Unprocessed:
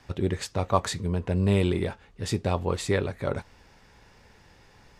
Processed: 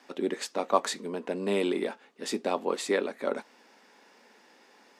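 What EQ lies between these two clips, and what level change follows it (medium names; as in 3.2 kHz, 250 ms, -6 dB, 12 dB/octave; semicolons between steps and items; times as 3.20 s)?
elliptic high-pass 230 Hz, stop band 70 dB; 0.0 dB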